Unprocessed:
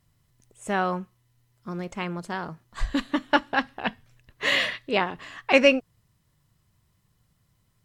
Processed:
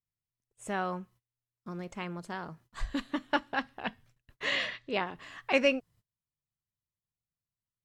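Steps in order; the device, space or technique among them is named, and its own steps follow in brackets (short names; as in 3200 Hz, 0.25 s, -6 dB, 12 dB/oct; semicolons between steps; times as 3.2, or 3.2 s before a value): 4.45–5.06 LPF 7300 Hz 24 dB/oct; parallel compression (in parallel at -3.5 dB: compressor, threshold -40 dBFS, peak gain reduction 25.5 dB); on the sum: gate -50 dBFS, range -26 dB; gain -8.5 dB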